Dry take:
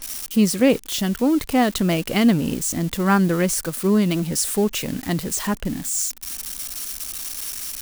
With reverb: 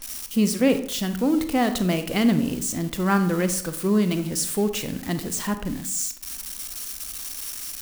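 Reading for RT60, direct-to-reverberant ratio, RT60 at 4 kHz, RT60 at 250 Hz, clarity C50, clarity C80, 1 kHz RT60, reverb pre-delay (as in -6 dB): 0.60 s, 9.0 dB, 0.40 s, 0.65 s, 11.0 dB, 14.5 dB, 0.60 s, 30 ms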